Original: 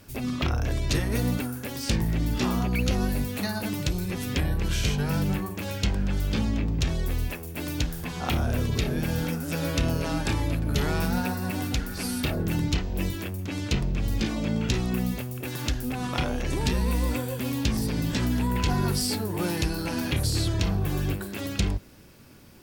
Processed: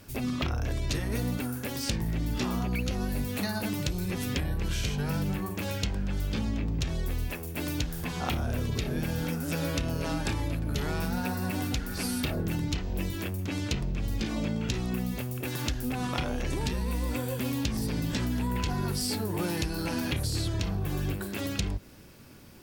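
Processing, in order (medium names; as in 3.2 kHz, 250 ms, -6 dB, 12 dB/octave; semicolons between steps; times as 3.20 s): compression, threshold -26 dBFS, peak gain reduction 7 dB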